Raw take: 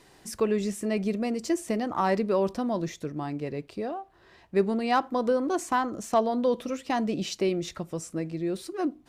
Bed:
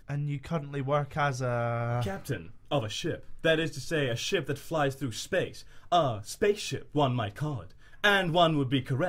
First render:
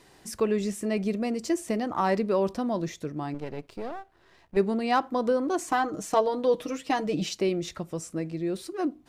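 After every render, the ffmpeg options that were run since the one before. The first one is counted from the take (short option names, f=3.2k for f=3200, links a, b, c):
-filter_complex "[0:a]asettb=1/sr,asplit=3[a][b][c];[a]atrim=end=3.344[d];[b]atrim=start=3.34:end=4.57,asetpts=PTS-STARTPTS,afade=t=in:d=0.004:c=qsin,afade=t=out:st=1.226:d=0.004:c=qsin,aeval=exprs='if(lt(val(0),0),0.251*val(0),val(0))':c=same[e];[c]atrim=start=4.566[f];[d][e]acrossfade=d=0.004:c1=hsin:c2=qsin[g];[g][f]acrossfade=d=0.004:c1=qsin:c2=hsin,asettb=1/sr,asplit=3[h][i][j];[h]atrim=end=5.674[k];[i]atrim=start=5.67:end=7.29,asetpts=PTS-STARTPTS,afade=t=in:d=0.004:c=qsin,afade=t=out:st=1.616:d=0.004:c=qsin,aecho=1:1:6.5:0.71,atrim=end_sample=71442[l];[j]atrim=start=7.286[m];[k][l]acrossfade=d=0.004:c1=hsin:c2=qsin[n];[n][m]acrossfade=d=0.004:c1=qsin:c2=hsin"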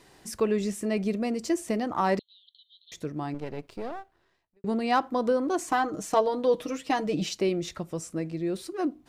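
-filter_complex "[0:a]asettb=1/sr,asplit=3[a][b][c];[a]atrim=end=2.194[d];[b]atrim=start=2.19:end=2.92,asetpts=PTS-STARTPTS,afade=t=in:d=0.004:c=qsin,afade=t=out:st=0.726:d=0.004:c=qsin,asuperpass=centerf=3600:order=12:qfactor=3.1[e];[c]atrim=start=2.916[f];[d][e]acrossfade=d=0.004:c1=hsin:c2=qsin[g];[g][f]acrossfade=d=0.004:c1=qsin:c2=hsin,asplit=2[h][i];[h]atrim=end=4.64,asetpts=PTS-STARTPTS,afade=t=out:st=3.99:d=0.65:c=qua[j];[i]atrim=start=4.64,asetpts=PTS-STARTPTS,afade=t=in:d=0.004:c=hsin[k];[j][k]concat=n=2:v=0:a=1"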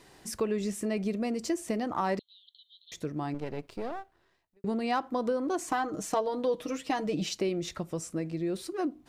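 -af "acompressor=threshold=-29dB:ratio=2"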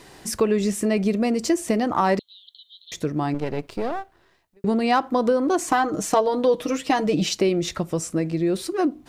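-af "volume=9.5dB"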